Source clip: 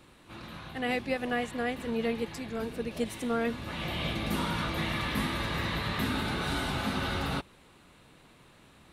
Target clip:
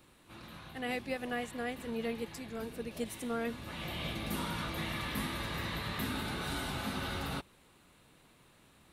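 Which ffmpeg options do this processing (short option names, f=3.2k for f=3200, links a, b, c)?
-af "highshelf=f=9.4k:g=10.5,volume=-6dB"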